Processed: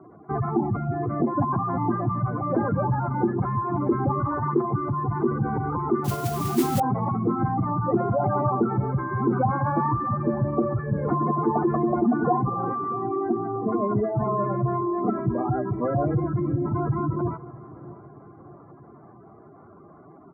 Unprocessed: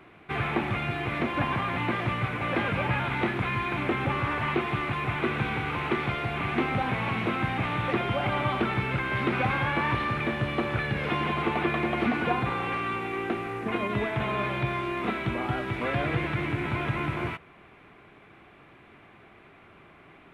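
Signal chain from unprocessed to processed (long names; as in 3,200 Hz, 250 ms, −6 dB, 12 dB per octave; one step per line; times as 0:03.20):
gate on every frequency bin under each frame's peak −10 dB strong
in parallel at −4 dB: hard clipping −23.5 dBFS, distortion −19 dB
on the sum: inverse Chebyshev low-pass filter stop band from 2,400 Hz, stop band 40 dB
repeating echo 639 ms, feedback 54%, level −20 dB
on a send at −21.5 dB: convolution reverb RT60 3.2 s, pre-delay 6 ms
0:06.04–0:06.80: on the sum: noise that follows the level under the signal 14 dB
high-pass filter 100 Hz
level +3 dB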